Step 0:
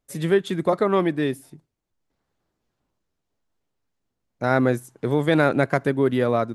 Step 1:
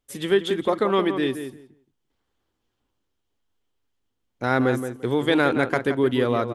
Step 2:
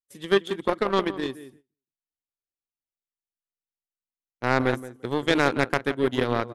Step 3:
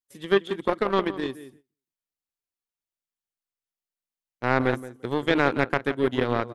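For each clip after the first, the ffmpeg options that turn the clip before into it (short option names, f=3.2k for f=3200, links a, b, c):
-filter_complex "[0:a]equalizer=f=160:t=o:w=0.33:g=-12,equalizer=f=630:t=o:w=0.33:g=-6,equalizer=f=3.15k:t=o:w=0.33:g=8,asplit=2[a][b];[b]adelay=172,lowpass=f=2.1k:p=1,volume=-8.5dB,asplit=2[c][d];[d]adelay=172,lowpass=f=2.1k:p=1,volume=0.18,asplit=2[e][f];[f]adelay=172,lowpass=f=2.1k:p=1,volume=0.18[g];[a][c][e][g]amix=inputs=4:normalize=0"
-af "agate=range=-20dB:threshold=-42dB:ratio=16:detection=peak,aeval=exprs='0.631*(cos(1*acos(clip(val(0)/0.631,-1,1)))-cos(1*PI/2))+0.02*(cos(5*acos(clip(val(0)/0.631,-1,1)))-cos(5*PI/2))+0.0794*(cos(7*acos(clip(val(0)/0.631,-1,1)))-cos(7*PI/2))':c=same"
-filter_complex "[0:a]acrossover=split=3800[a][b];[b]acompressor=threshold=-48dB:ratio=4:attack=1:release=60[c];[a][c]amix=inputs=2:normalize=0"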